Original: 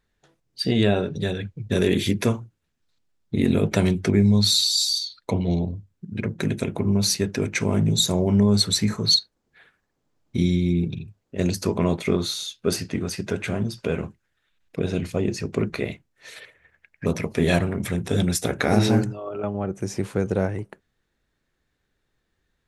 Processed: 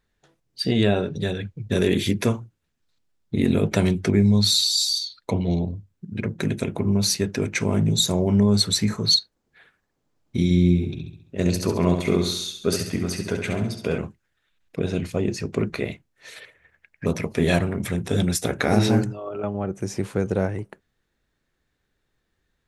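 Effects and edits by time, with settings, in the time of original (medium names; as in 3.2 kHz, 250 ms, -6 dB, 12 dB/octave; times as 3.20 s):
10.44–13.98 s: flutter echo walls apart 11.6 m, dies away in 0.61 s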